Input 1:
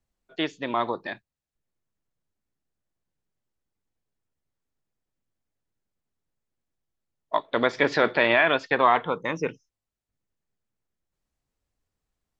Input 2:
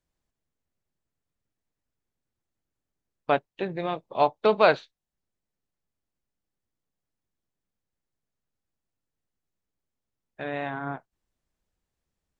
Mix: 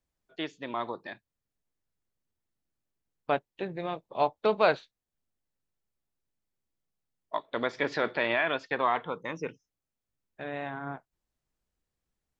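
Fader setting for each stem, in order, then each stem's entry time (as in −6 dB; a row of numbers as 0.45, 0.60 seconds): −7.5, −4.5 decibels; 0.00, 0.00 seconds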